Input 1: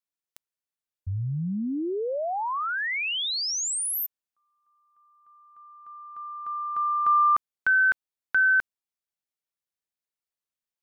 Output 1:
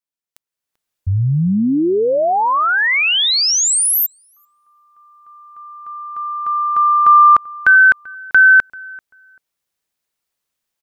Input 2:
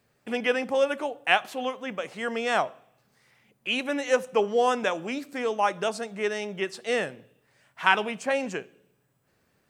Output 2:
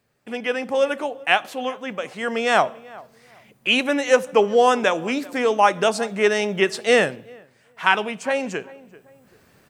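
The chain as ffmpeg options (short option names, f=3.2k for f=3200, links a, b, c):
-filter_complex "[0:a]asplit=2[a][b];[b]adelay=389,lowpass=f=1.7k:p=1,volume=-22dB,asplit=2[c][d];[d]adelay=389,lowpass=f=1.7k:p=1,volume=0.22[e];[a][c][e]amix=inputs=3:normalize=0,dynaudnorm=f=440:g=3:m=14.5dB,volume=-1dB"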